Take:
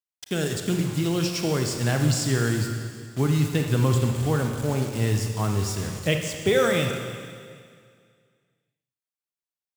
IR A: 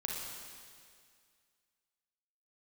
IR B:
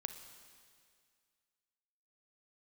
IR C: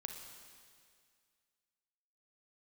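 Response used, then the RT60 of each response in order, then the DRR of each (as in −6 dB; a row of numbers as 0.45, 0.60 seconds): C; 2.1, 2.1, 2.1 seconds; −2.0, 8.0, 3.5 decibels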